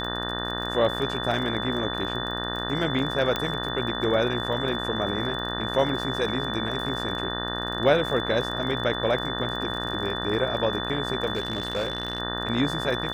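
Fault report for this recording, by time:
buzz 60 Hz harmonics 31 -32 dBFS
crackle 32/s -32 dBFS
tone 3500 Hz -32 dBFS
3.36 pop -11 dBFS
11.33–12.2 clipped -22 dBFS

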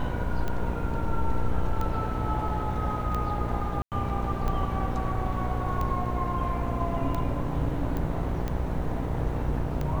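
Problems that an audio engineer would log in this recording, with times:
buzz 60 Hz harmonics 17 -32 dBFS
tick 45 rpm -18 dBFS
3.82–3.92 gap 98 ms
7.97 pop -20 dBFS

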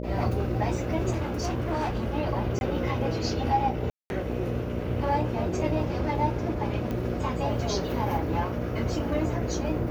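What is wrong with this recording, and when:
buzz 60 Hz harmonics 10 -33 dBFS
1.1–2.02 clipped -24 dBFS
2.59–2.61 gap 21 ms
3.9–4.1 gap 0.201 s
6.91 pop -20 dBFS

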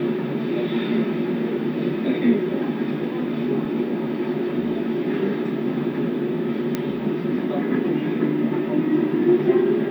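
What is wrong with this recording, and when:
3.65 gap 2.9 ms
6.75 pop -10 dBFS

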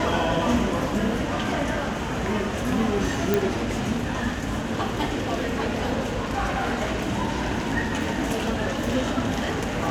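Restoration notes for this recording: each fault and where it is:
3.34 pop

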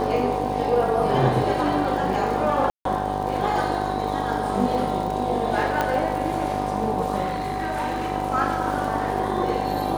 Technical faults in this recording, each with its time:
buzz 50 Hz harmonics 21 -29 dBFS
crackle 83/s -31 dBFS
tone 750 Hz -28 dBFS
2.7–2.85 gap 0.153 s
5.81 pop -9 dBFS
7.23–8.12 clipped -21 dBFS

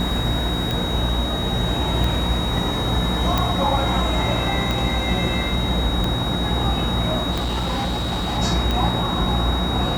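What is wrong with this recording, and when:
hum 60 Hz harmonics 6 -26 dBFS
tick 45 rpm
tone 3800 Hz -27 dBFS
3.38 pop
7.31–8.39 clipped -20 dBFS

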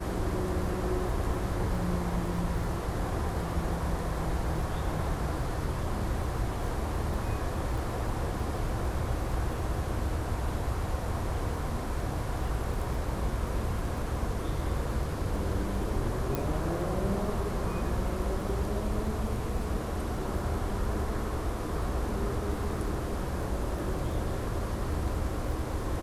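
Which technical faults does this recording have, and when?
crackle 12/s -37 dBFS
16.35 pop

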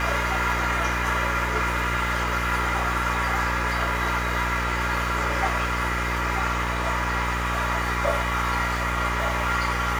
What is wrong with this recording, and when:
buzz 60 Hz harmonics 37 -29 dBFS

